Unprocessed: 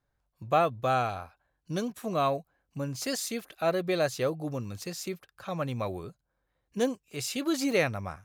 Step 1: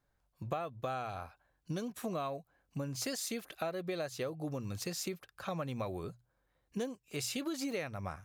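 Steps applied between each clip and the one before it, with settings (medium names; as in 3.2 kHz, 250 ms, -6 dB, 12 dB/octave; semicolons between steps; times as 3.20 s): hum notches 60/120 Hz; compression 12:1, threshold -35 dBFS, peak gain reduction 16.5 dB; trim +1 dB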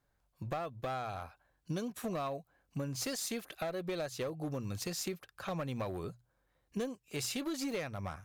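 one-sided clip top -34 dBFS; trim +1 dB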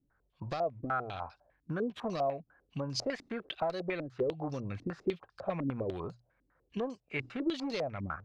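step-sequenced low-pass 10 Hz 280–4900 Hz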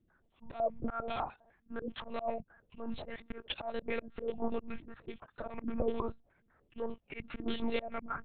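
monotone LPC vocoder at 8 kHz 230 Hz; slow attack 189 ms; trim +4 dB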